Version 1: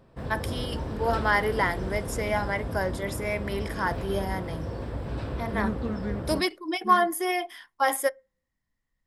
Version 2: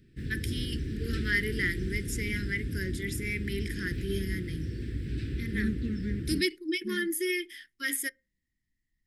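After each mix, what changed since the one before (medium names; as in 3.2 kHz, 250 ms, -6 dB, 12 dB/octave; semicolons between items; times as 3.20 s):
master: add Chebyshev band-stop 360–1800 Hz, order 3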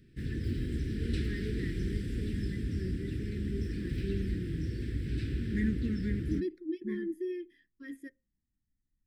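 first voice: add boxcar filter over 60 samples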